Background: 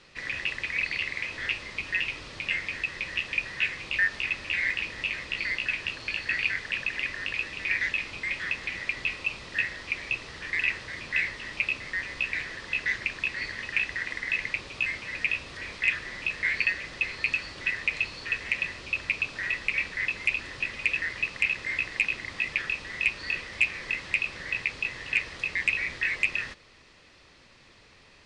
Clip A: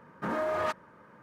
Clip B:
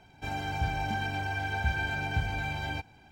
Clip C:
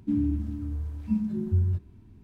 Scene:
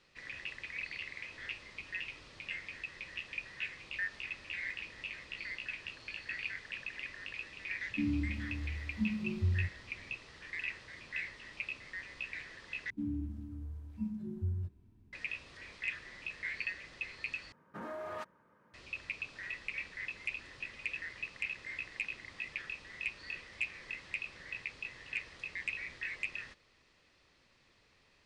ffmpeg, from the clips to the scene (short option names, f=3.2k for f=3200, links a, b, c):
-filter_complex "[3:a]asplit=2[a][b];[0:a]volume=-12.5dB,asplit=3[c][d][e];[c]atrim=end=12.904[f];[b]atrim=end=2.23,asetpts=PTS-STARTPTS,volume=-11.5dB[g];[d]atrim=start=15.126:end=17.524[h];[1:a]atrim=end=1.22,asetpts=PTS-STARTPTS,volume=-12dB[i];[e]atrim=start=18.736[j];[a]atrim=end=2.23,asetpts=PTS-STARTPTS,volume=-7.5dB,afade=t=in:d=0.004:c=hsin,afade=t=out:st=2.226:d=0.004:c=hsin,adelay=7900[k];[f][g]acrossfade=d=0.004:c1=hsin:c2=hsin[l];[l][h]acrossfade=d=0.004:c1=hsin:c2=hsin[m];[m][i]acrossfade=d=0.004:c1=hsin:c2=hsin[n];[n][j]acrossfade=d=0.004:c1=hsin:c2=hsin[o];[o][k]amix=inputs=2:normalize=0"